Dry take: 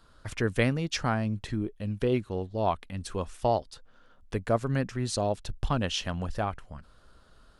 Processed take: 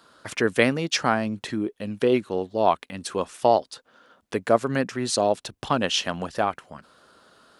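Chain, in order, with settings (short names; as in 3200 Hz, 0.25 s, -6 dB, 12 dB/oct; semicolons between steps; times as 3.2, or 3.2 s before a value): HPF 240 Hz 12 dB/oct; gain +7.5 dB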